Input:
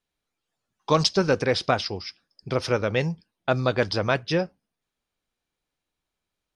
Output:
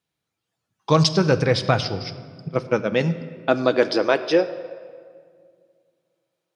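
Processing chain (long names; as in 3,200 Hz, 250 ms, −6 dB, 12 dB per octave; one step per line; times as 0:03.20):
0:02.48–0:02.92: noise gate −23 dBFS, range −29 dB
rectangular room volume 3,700 cubic metres, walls mixed, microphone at 0.65 metres
high-pass filter sweep 100 Hz → 520 Hz, 0:01.60–0:04.87
level +1.5 dB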